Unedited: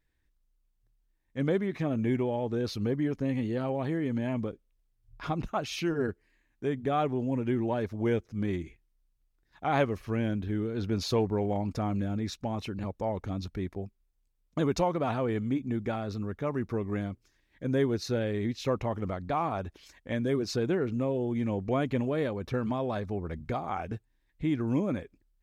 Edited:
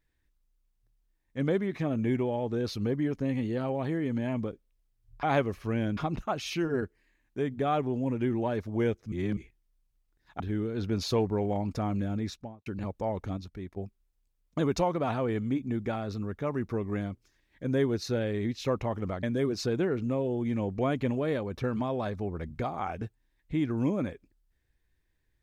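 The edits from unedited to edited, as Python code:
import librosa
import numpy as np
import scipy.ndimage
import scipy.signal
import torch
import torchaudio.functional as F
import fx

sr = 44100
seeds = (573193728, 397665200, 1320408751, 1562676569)

y = fx.studio_fade_out(x, sr, start_s=12.22, length_s=0.44)
y = fx.edit(y, sr, fx.reverse_span(start_s=8.38, length_s=0.25),
    fx.move(start_s=9.66, length_s=0.74, to_s=5.23),
    fx.clip_gain(start_s=13.37, length_s=0.4, db=-6.0),
    fx.cut(start_s=19.23, length_s=0.9), tone=tone)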